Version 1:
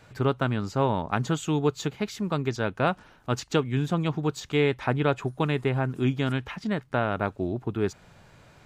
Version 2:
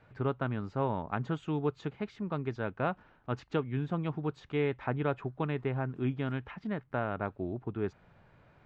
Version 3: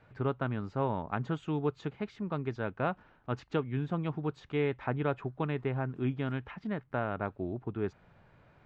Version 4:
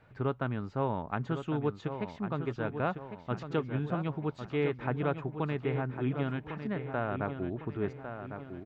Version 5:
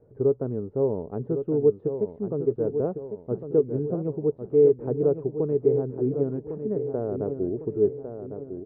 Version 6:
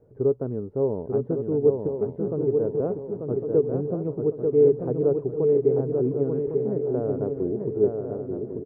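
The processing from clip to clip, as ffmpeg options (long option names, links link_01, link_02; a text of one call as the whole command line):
ffmpeg -i in.wav -af "lowpass=2300,volume=-7dB" out.wav
ffmpeg -i in.wav -af anull out.wav
ffmpeg -i in.wav -filter_complex "[0:a]asplit=2[link_01][link_02];[link_02]adelay=1103,lowpass=frequency=4300:poles=1,volume=-8.5dB,asplit=2[link_03][link_04];[link_04]adelay=1103,lowpass=frequency=4300:poles=1,volume=0.48,asplit=2[link_05][link_06];[link_06]adelay=1103,lowpass=frequency=4300:poles=1,volume=0.48,asplit=2[link_07][link_08];[link_08]adelay=1103,lowpass=frequency=4300:poles=1,volume=0.48,asplit=2[link_09][link_10];[link_10]adelay=1103,lowpass=frequency=4300:poles=1,volume=0.48[link_11];[link_01][link_03][link_05][link_07][link_09][link_11]amix=inputs=6:normalize=0" out.wav
ffmpeg -i in.wav -af "lowpass=frequency=440:width_type=q:width=4.9,volume=1dB" out.wav
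ffmpeg -i in.wav -af "aecho=1:1:890|1780|2670|3560:0.596|0.185|0.0572|0.0177" out.wav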